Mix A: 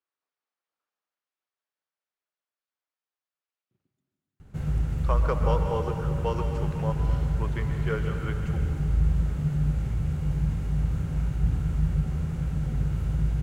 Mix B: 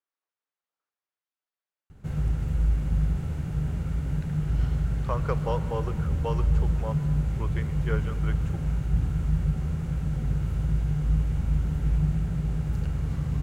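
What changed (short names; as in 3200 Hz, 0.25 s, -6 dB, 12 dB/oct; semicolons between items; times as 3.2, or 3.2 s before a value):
speech: send -11.0 dB; background: entry -2.50 s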